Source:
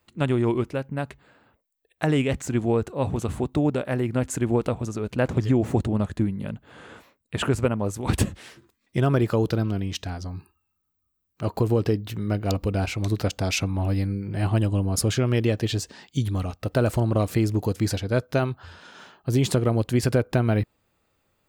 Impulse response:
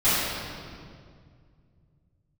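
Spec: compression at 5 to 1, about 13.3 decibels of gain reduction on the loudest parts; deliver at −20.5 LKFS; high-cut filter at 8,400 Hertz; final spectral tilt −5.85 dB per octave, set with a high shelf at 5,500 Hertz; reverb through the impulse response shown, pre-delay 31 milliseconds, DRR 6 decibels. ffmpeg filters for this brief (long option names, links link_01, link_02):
-filter_complex "[0:a]lowpass=8400,highshelf=frequency=5500:gain=6,acompressor=threshold=-32dB:ratio=5,asplit=2[link_01][link_02];[1:a]atrim=start_sample=2205,adelay=31[link_03];[link_02][link_03]afir=irnorm=-1:irlink=0,volume=-24dB[link_04];[link_01][link_04]amix=inputs=2:normalize=0,volume=14.5dB"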